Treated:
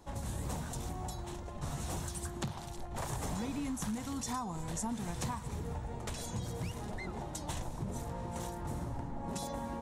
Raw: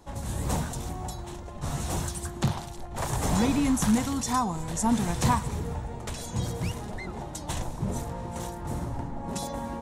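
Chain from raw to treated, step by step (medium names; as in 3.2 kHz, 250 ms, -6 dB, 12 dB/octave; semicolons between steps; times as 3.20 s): compression 6:1, threshold -31 dBFS, peak gain reduction 12.5 dB; trim -3.5 dB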